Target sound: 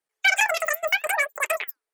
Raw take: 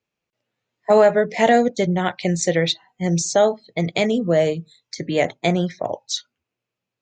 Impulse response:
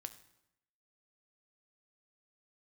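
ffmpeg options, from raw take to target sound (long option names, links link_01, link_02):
-af "asetrate=160083,aresample=44100,flanger=delay=0.3:depth=7.4:regen=-87:speed=0.72:shape=triangular"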